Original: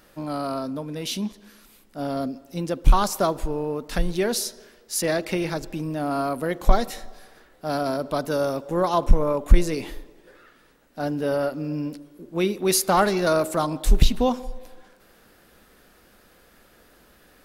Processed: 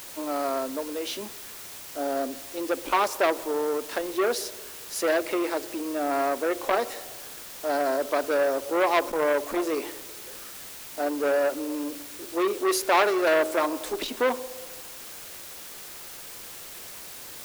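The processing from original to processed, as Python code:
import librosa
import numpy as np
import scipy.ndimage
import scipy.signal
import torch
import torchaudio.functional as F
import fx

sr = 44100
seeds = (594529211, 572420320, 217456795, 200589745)

p1 = scipy.signal.sosfilt(scipy.signal.cheby2(4, 40, 160.0, 'highpass', fs=sr, output='sos'), x)
p2 = fx.high_shelf(p1, sr, hz=2600.0, db=-11.5)
p3 = fx.notch(p2, sr, hz=770.0, q=21.0)
p4 = fx.quant_dither(p3, sr, seeds[0], bits=6, dither='triangular')
p5 = p3 + F.gain(torch.from_numpy(p4), -5.5).numpy()
y = fx.transformer_sat(p5, sr, knee_hz=1800.0)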